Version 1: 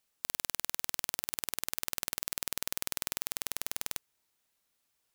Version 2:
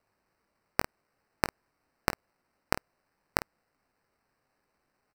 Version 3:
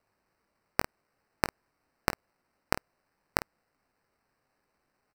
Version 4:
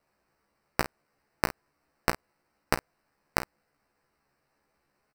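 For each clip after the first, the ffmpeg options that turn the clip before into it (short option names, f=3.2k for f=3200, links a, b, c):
-af "acrusher=samples=13:mix=1:aa=0.000001,aecho=1:1:20|50:0.266|0.2"
-af anull
-filter_complex "[0:a]asplit=2[a][b];[b]adelay=14,volume=-2.5dB[c];[a][c]amix=inputs=2:normalize=0"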